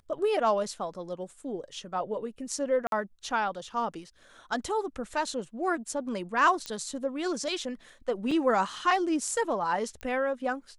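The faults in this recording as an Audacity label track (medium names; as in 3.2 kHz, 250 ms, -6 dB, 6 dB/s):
2.870000	2.920000	dropout 52 ms
6.660000	6.660000	pop -19 dBFS
8.310000	8.310000	dropout 4.3 ms
10.010000	10.010000	pop -24 dBFS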